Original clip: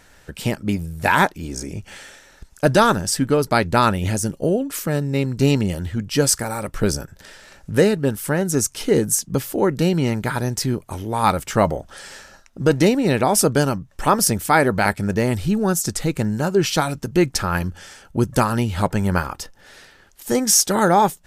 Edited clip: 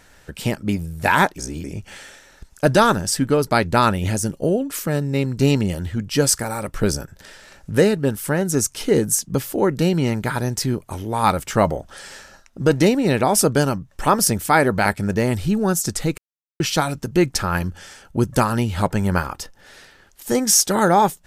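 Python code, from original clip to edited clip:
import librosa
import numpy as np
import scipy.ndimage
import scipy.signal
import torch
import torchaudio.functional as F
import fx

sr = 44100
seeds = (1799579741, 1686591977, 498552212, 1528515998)

y = fx.edit(x, sr, fx.reverse_span(start_s=1.38, length_s=0.26),
    fx.silence(start_s=16.18, length_s=0.42), tone=tone)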